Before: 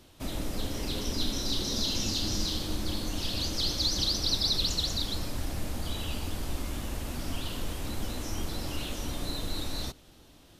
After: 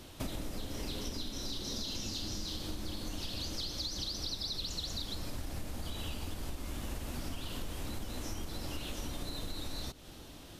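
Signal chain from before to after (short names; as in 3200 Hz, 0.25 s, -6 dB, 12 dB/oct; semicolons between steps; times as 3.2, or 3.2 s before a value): compressor 16:1, threshold -40 dBFS, peak gain reduction 18 dB; gain +5.5 dB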